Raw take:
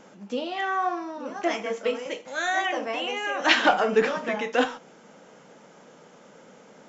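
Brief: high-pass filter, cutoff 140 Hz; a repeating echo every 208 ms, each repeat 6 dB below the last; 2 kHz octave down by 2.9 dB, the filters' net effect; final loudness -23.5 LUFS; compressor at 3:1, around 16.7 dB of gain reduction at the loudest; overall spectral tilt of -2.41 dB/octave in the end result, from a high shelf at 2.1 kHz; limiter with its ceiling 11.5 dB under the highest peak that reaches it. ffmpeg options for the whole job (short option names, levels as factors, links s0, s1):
-af "highpass=140,equalizer=f=2000:t=o:g=-8.5,highshelf=f=2100:g=8,acompressor=threshold=0.0126:ratio=3,alimiter=level_in=2.37:limit=0.0631:level=0:latency=1,volume=0.422,aecho=1:1:208|416|624|832|1040|1248:0.501|0.251|0.125|0.0626|0.0313|0.0157,volume=7.08"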